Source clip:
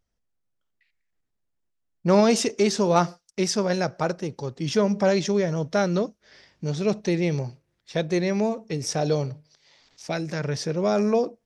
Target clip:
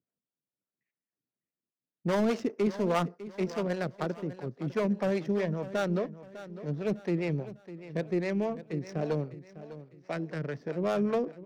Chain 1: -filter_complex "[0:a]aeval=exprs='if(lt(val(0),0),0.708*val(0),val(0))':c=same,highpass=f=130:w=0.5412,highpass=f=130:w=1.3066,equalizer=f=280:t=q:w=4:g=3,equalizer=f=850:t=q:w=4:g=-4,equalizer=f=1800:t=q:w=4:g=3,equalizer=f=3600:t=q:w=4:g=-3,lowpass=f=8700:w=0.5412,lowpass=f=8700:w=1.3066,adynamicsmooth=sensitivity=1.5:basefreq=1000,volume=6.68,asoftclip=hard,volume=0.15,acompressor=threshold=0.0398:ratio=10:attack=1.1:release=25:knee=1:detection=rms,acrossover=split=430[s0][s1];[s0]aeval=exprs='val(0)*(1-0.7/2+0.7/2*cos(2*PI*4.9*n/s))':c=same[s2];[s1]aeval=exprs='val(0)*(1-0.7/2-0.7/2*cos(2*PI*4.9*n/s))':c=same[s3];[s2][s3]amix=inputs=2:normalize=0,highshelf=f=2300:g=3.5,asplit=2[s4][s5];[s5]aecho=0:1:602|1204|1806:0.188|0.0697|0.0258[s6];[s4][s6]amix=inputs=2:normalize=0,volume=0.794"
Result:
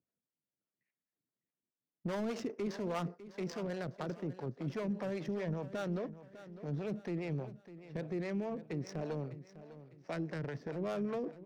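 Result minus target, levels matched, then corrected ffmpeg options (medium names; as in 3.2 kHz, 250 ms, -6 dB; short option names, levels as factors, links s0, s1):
compression: peak gain reduction +10 dB
-filter_complex "[0:a]aeval=exprs='if(lt(val(0),0),0.708*val(0),val(0))':c=same,highpass=f=130:w=0.5412,highpass=f=130:w=1.3066,equalizer=f=280:t=q:w=4:g=3,equalizer=f=850:t=q:w=4:g=-4,equalizer=f=1800:t=q:w=4:g=3,equalizer=f=3600:t=q:w=4:g=-3,lowpass=f=8700:w=0.5412,lowpass=f=8700:w=1.3066,adynamicsmooth=sensitivity=1.5:basefreq=1000,volume=6.68,asoftclip=hard,volume=0.15,acrossover=split=430[s0][s1];[s0]aeval=exprs='val(0)*(1-0.7/2+0.7/2*cos(2*PI*4.9*n/s))':c=same[s2];[s1]aeval=exprs='val(0)*(1-0.7/2-0.7/2*cos(2*PI*4.9*n/s))':c=same[s3];[s2][s3]amix=inputs=2:normalize=0,highshelf=f=2300:g=3.5,asplit=2[s4][s5];[s5]aecho=0:1:602|1204|1806:0.188|0.0697|0.0258[s6];[s4][s6]amix=inputs=2:normalize=0,volume=0.794"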